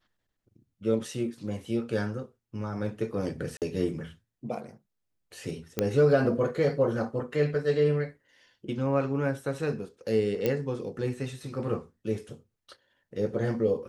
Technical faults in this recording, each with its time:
3.57–3.62 gap 48 ms
5.79 pop -12 dBFS
10.46 pop -14 dBFS

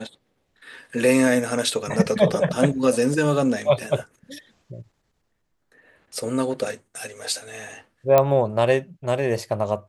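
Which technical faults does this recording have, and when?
8.18 pop -4 dBFS

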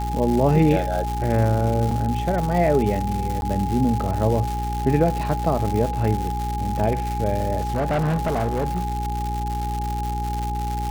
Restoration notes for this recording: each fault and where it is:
crackle 290/s -25 dBFS
hum 60 Hz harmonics 7 -27 dBFS
tone 830 Hz -27 dBFS
1.91 gap 3.8 ms
3.41–3.42 gap 11 ms
7.61–10.1 clipped -18.5 dBFS

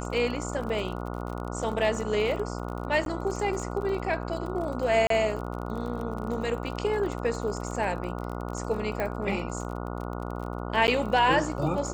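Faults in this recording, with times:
buzz 60 Hz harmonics 24 -34 dBFS
crackle 35/s -34 dBFS
3.05–3.06 gap 12 ms
5.07–5.1 gap 33 ms
9 pop -17 dBFS
10.87–10.88 gap 9.8 ms

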